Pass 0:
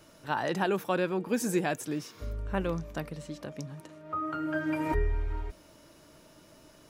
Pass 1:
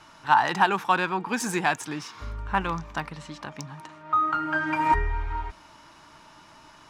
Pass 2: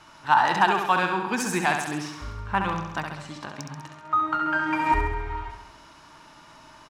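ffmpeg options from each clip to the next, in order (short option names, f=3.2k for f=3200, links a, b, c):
-af "lowshelf=f=700:t=q:w=3:g=-7.5,adynamicsmooth=sensitivity=7.5:basefreq=6.3k,volume=8.5dB"
-af "aecho=1:1:67|134|201|268|335|402|469|536:0.501|0.291|0.169|0.0978|0.0567|0.0329|0.0191|0.0111"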